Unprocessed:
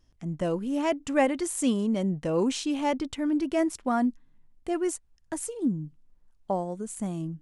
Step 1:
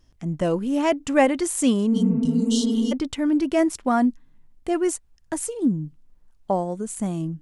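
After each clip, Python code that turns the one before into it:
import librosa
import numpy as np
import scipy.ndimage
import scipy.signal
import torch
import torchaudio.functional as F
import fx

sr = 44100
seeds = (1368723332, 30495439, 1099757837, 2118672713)

y = fx.spec_repair(x, sr, seeds[0], start_s=1.94, length_s=0.96, low_hz=220.0, high_hz=2800.0, source='before')
y = F.gain(torch.from_numpy(y), 5.5).numpy()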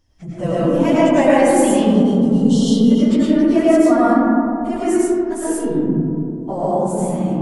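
y = fx.phase_scramble(x, sr, seeds[1], window_ms=50)
y = fx.rev_freeverb(y, sr, rt60_s=2.8, hf_ratio=0.25, predelay_ms=65, drr_db=-8.5)
y = F.gain(torch.from_numpy(y), -3.0).numpy()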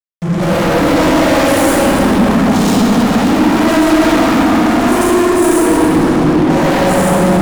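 y = fx.fuzz(x, sr, gain_db=32.0, gate_db=-39.0)
y = fx.rev_plate(y, sr, seeds[2], rt60_s=3.3, hf_ratio=0.5, predelay_ms=0, drr_db=-5.5)
y = fx.power_curve(y, sr, exponent=0.7)
y = F.gain(torch.from_numpy(y), -6.5).numpy()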